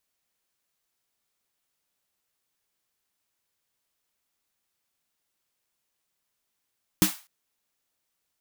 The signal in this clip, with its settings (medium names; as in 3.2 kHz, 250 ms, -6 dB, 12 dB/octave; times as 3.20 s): snare drum length 0.25 s, tones 190 Hz, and 310 Hz, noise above 770 Hz, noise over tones -4 dB, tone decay 0.13 s, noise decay 0.33 s